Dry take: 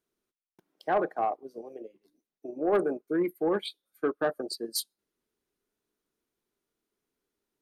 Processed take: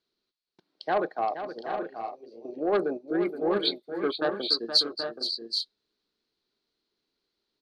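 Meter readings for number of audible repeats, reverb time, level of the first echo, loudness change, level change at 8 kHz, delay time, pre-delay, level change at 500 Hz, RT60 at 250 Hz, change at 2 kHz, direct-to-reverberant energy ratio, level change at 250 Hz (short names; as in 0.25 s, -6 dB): 3, none, -10.0 dB, +2.0 dB, -7.0 dB, 0.472 s, none, +1.0 dB, none, +2.5 dB, none, +1.0 dB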